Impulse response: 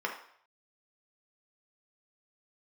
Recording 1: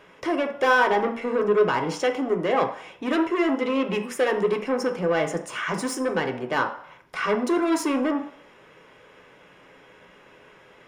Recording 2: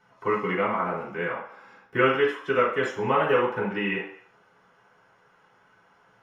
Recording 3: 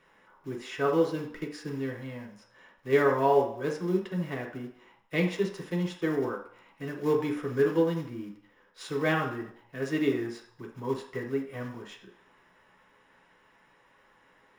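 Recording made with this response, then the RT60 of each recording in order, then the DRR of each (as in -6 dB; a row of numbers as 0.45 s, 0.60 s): 3; 0.60 s, 0.60 s, 0.60 s; 3.5 dB, -9.0 dB, -0.5 dB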